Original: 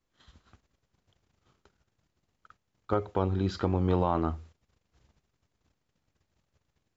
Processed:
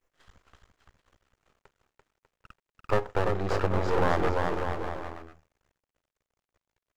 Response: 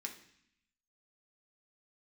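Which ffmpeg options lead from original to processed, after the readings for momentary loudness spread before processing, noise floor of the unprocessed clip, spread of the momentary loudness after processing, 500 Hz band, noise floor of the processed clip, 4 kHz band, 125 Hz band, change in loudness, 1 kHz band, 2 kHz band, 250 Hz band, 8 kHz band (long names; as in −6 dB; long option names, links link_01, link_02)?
6 LU, −80 dBFS, 12 LU, +4.0 dB, below −85 dBFS, +4.0 dB, −1.5 dB, +0.5 dB, +4.0 dB, +13.5 dB, −3.0 dB, can't be measured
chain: -af "equalizer=frequency=125:width_type=o:width=1:gain=-11,equalizer=frequency=250:width_type=o:width=1:gain=-6,equalizer=frequency=500:width_type=o:width=1:gain=4,equalizer=frequency=2000:width_type=o:width=1:gain=3,equalizer=frequency=4000:width_type=o:width=1:gain=-10,aecho=1:1:340|595|786.2|929.7|1037:0.631|0.398|0.251|0.158|0.1,aeval=exprs='max(val(0),0)':channel_layout=same,volume=7dB"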